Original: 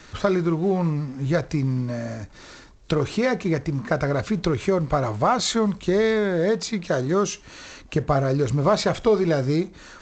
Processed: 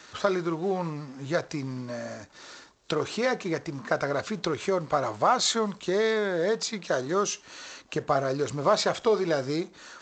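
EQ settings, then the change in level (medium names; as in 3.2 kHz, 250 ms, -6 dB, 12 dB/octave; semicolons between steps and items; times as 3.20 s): high-pass 590 Hz 6 dB/octave; peaking EQ 2.2 kHz -3.5 dB 0.56 oct; 0.0 dB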